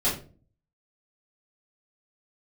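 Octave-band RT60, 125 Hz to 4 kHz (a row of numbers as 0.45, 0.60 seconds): 0.70, 0.60, 0.45, 0.30, 0.30, 0.25 seconds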